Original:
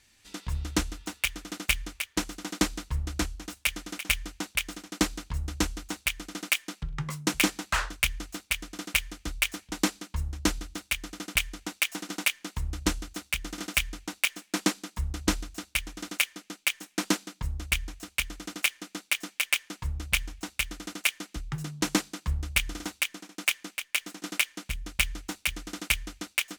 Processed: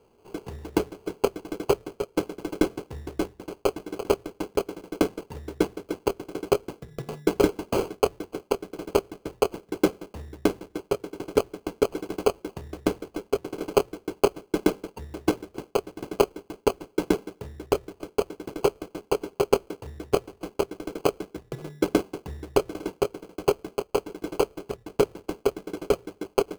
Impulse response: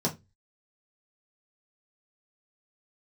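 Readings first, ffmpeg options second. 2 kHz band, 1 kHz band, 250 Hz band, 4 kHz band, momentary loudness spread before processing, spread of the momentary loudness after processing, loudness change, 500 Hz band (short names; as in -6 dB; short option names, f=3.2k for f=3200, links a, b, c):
-10.5 dB, +6.0 dB, +5.0 dB, -9.0 dB, 8 LU, 12 LU, +1.5 dB, +18.0 dB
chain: -filter_complex "[0:a]highpass=f=85:w=0.5412,highpass=f=85:w=1.3066,asplit=2[a][b];[1:a]atrim=start_sample=2205[c];[b][c]afir=irnorm=-1:irlink=0,volume=-25dB[d];[a][d]amix=inputs=2:normalize=0,acrusher=samples=24:mix=1:aa=0.000001,equalizer=f=410:t=o:w=0.57:g=14.5,volume=-2dB"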